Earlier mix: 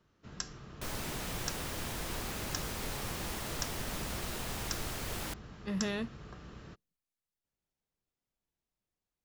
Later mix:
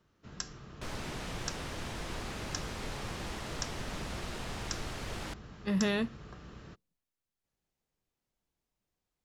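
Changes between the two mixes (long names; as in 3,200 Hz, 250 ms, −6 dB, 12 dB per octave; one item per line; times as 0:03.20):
speech +5.0 dB
second sound: add high-frequency loss of the air 63 metres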